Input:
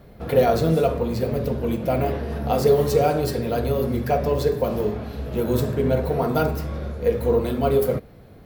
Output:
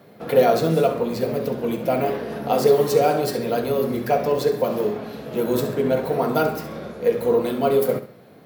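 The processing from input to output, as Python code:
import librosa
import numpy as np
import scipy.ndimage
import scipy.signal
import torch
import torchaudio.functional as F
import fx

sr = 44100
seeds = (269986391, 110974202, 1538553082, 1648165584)

p1 = scipy.signal.sosfilt(scipy.signal.bessel(4, 200.0, 'highpass', norm='mag', fs=sr, output='sos'), x)
p2 = p1 + fx.echo_feedback(p1, sr, ms=67, feedback_pct=34, wet_db=-12, dry=0)
y = p2 * librosa.db_to_amplitude(2.0)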